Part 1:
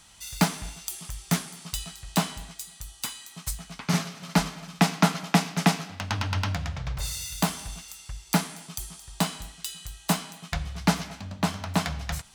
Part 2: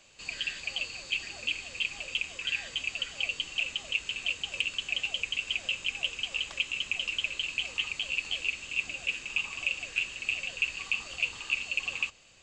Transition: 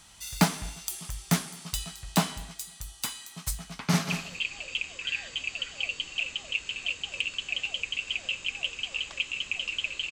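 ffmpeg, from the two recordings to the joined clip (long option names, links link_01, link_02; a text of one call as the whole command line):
ffmpeg -i cue0.wav -i cue1.wav -filter_complex "[0:a]apad=whole_dur=10.11,atrim=end=10.11,atrim=end=4.102[link_01];[1:a]atrim=start=1.498:end=7.51[link_02];[link_01][link_02]acrossfade=duration=0.004:curve1=hsin:curve2=hsin,asplit=2[link_03][link_04];[link_04]afade=type=in:start_time=3.75:duration=0.01,afade=type=out:start_time=4.1:duration=0.01,aecho=0:1:190|380:0.398107|0.0597161[link_05];[link_03][link_05]amix=inputs=2:normalize=0" out.wav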